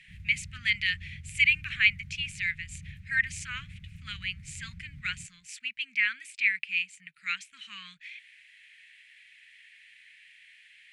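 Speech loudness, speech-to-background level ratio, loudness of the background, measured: -29.0 LUFS, 19.0 dB, -48.0 LUFS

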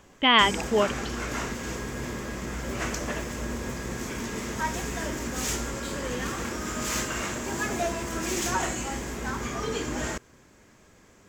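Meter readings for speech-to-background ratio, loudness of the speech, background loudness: 9.0 dB, -22.0 LUFS, -31.0 LUFS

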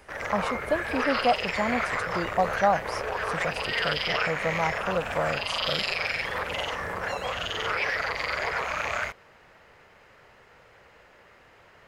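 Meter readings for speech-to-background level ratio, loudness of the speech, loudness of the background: -1.5 dB, -30.0 LUFS, -28.5 LUFS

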